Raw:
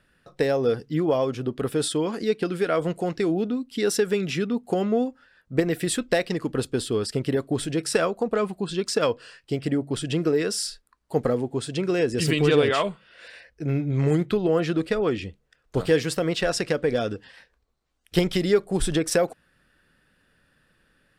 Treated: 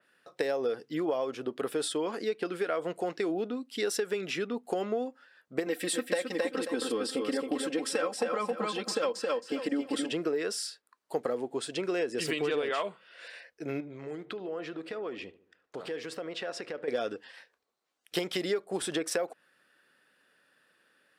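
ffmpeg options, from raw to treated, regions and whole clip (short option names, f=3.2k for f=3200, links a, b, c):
-filter_complex "[0:a]asettb=1/sr,asplit=3[a][b][c];[a]atrim=end=5.664[d];[b]atrim=start=5.66:end=10.12,asetpts=PTS-STARTPTS,afade=t=in:d=0.004:c=qsin,afade=t=out:st=4.456:d=0.004:c=qsin,aecho=1:1:3.8:0.9,atrim=end_sample=196686,aecho=1:1:269|538|807:0.596|0.125|0.0263,atrim=end_sample=196686[e];[c]atrim=start=10.116[f];[d][e]acrossfade=d=0.004:c1=hsin:c2=qsin[g];[g][f]acrossfade=d=0.004:c1=qsin:c2=hsin,asettb=1/sr,asplit=3[h][i][j];[h]atrim=end=13.804[k];[i]atrim=start=13.8:end=16.88,asetpts=PTS-STARTPTS,afade=t=in:d=0.004:c=qsin,afade=t=out:st=3.076:d=0.004:c=qsin,aemphasis=mode=reproduction:type=50kf,acompressor=threshold=-30dB:ratio=5:attack=3.2:release=140:knee=1:detection=peak,asplit=2[l][m];[m]adelay=74,lowpass=f=1.4k:p=1,volume=-16dB,asplit=2[n][o];[o]adelay=74,lowpass=f=1.4k:p=1,volume=0.51,asplit=2[p][q];[q]adelay=74,lowpass=f=1.4k:p=1,volume=0.51,asplit=2[r][s];[s]adelay=74,lowpass=f=1.4k:p=1,volume=0.51,asplit=2[t][u];[u]adelay=74,lowpass=f=1.4k:p=1,volume=0.51[v];[l][n][p][r][t][v]amix=inputs=6:normalize=0,atrim=end_sample=135828[w];[j]atrim=start=16.876[x];[k][w]acrossfade=d=0.004:c1=hsin:c2=qsin[y];[y][x]acrossfade=d=0.004:c1=qsin:c2=hsin,highpass=370,acompressor=threshold=-25dB:ratio=6,adynamicequalizer=threshold=0.00447:dfrequency=3100:dqfactor=0.7:tfrequency=3100:tqfactor=0.7:attack=5:release=100:ratio=0.375:range=2.5:mode=cutabove:tftype=highshelf,volume=-1.5dB"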